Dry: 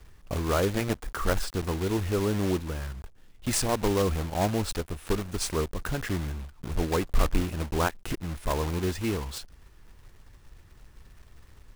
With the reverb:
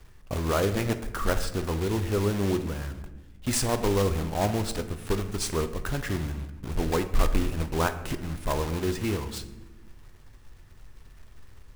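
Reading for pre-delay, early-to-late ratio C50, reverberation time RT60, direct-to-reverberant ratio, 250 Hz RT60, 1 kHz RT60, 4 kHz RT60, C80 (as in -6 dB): 8 ms, 12.5 dB, 1.1 s, 9.0 dB, 1.7 s, 0.95 s, 0.75 s, 14.0 dB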